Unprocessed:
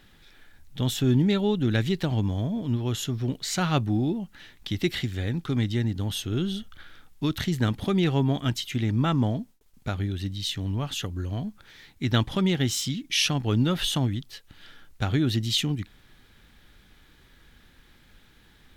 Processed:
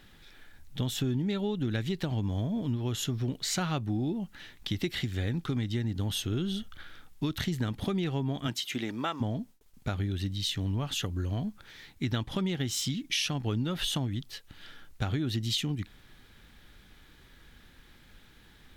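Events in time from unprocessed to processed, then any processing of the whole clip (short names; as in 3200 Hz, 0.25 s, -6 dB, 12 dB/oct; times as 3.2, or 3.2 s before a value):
8.46–9.2 HPF 150 Hz -> 580 Hz
whole clip: compressor, threshold -27 dBFS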